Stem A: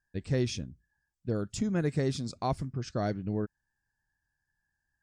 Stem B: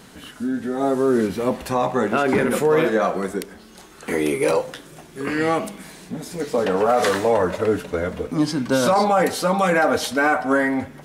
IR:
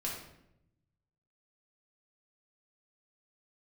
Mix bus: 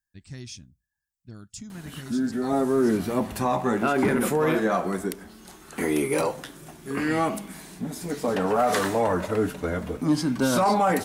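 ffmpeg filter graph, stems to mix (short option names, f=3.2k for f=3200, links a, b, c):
-filter_complex "[0:a]equalizer=f=470:t=o:w=0.77:g=-9,volume=-9.5dB[a];[1:a]highshelf=f=2.1k:g=-11.5,adelay=1700,volume=-0.5dB[b];[a][b]amix=inputs=2:normalize=0,equalizer=f=500:t=o:w=0.44:g=-7,crystalizer=i=2.5:c=0,asoftclip=type=tanh:threshold=-10.5dB"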